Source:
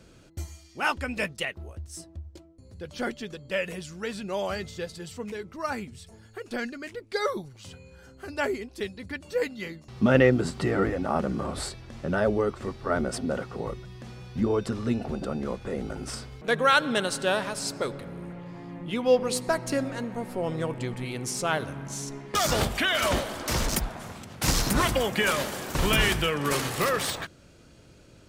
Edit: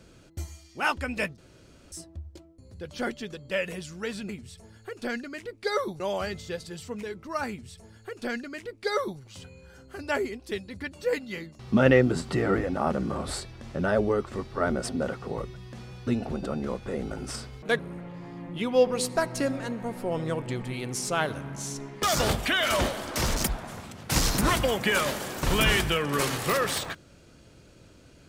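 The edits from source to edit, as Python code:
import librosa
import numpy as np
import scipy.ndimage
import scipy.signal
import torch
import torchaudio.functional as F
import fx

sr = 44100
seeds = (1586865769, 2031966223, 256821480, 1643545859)

y = fx.edit(x, sr, fx.room_tone_fill(start_s=1.38, length_s=0.54),
    fx.duplicate(start_s=5.78, length_s=1.71, to_s=4.29),
    fx.cut(start_s=14.36, length_s=0.5),
    fx.cut(start_s=16.58, length_s=1.53), tone=tone)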